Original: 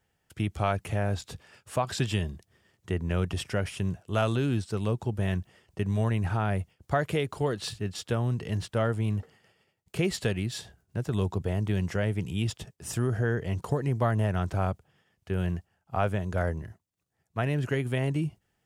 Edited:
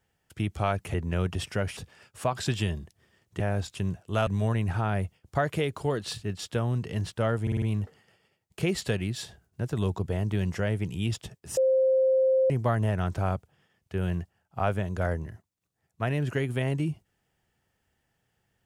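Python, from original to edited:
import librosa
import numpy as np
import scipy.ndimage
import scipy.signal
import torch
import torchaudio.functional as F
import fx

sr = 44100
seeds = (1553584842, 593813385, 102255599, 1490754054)

y = fx.edit(x, sr, fx.swap(start_s=0.94, length_s=0.35, other_s=2.92, other_length_s=0.83),
    fx.cut(start_s=4.27, length_s=1.56),
    fx.stutter(start_s=8.98, slice_s=0.05, count=5),
    fx.bleep(start_s=12.93, length_s=0.93, hz=525.0, db=-19.0), tone=tone)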